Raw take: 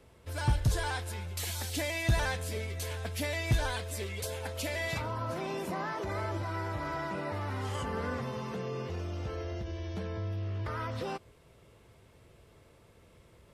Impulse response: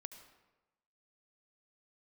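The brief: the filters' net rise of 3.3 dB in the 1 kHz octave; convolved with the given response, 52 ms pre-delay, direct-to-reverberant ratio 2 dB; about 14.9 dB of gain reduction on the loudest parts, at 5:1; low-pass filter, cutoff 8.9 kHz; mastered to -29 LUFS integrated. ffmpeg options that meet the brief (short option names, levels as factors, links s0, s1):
-filter_complex "[0:a]lowpass=8900,equalizer=f=1000:t=o:g=4,acompressor=threshold=0.0112:ratio=5,asplit=2[s0][s1];[1:a]atrim=start_sample=2205,adelay=52[s2];[s1][s2]afir=irnorm=-1:irlink=0,volume=1.41[s3];[s0][s3]amix=inputs=2:normalize=0,volume=3.55"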